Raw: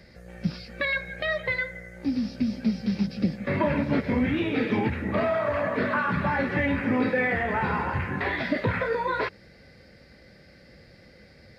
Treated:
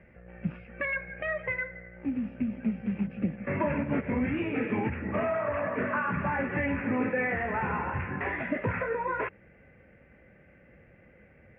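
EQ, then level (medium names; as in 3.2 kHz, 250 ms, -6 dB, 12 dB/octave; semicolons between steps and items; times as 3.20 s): elliptic low-pass 2.7 kHz, stop band 40 dB; -3.5 dB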